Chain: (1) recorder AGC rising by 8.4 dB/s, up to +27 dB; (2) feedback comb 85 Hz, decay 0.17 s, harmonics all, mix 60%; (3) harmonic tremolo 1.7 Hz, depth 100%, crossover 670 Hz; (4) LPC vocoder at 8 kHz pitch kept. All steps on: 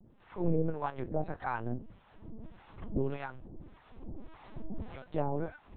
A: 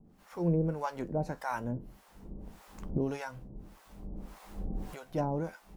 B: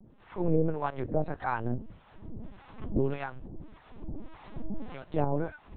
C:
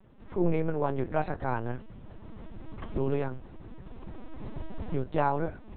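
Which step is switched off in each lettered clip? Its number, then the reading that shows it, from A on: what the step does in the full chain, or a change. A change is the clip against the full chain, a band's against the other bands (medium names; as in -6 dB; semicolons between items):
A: 4, 125 Hz band +2.0 dB; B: 2, loudness change +4.0 LU; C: 3, loudness change +4.5 LU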